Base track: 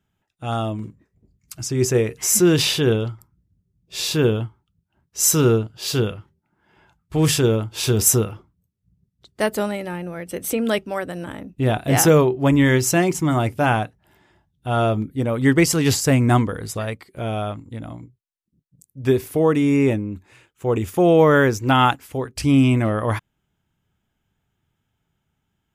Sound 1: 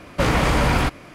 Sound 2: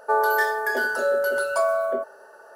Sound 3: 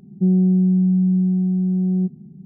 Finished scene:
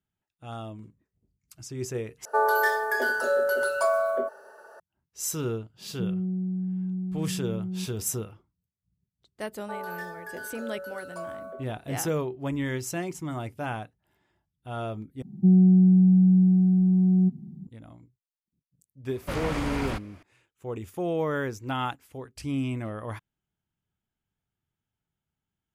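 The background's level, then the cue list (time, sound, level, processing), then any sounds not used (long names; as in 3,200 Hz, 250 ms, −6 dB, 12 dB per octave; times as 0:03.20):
base track −14 dB
0:02.25: overwrite with 2 −2 dB
0:05.78: mix in 3 −13.5 dB
0:09.60: mix in 2 −16 dB
0:15.22: overwrite with 3 −1 dB + drawn EQ curve 330 Hz 0 dB, 470 Hz −15 dB, 870 Hz +5 dB
0:19.09: mix in 1 −12.5 dB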